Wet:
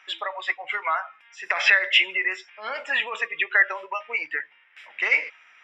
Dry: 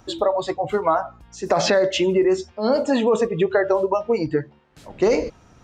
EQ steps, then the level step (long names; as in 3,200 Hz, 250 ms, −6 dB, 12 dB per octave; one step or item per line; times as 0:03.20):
Savitzky-Golay smoothing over 25 samples
high-pass with resonance 2,100 Hz, resonance Q 3.4
+5.0 dB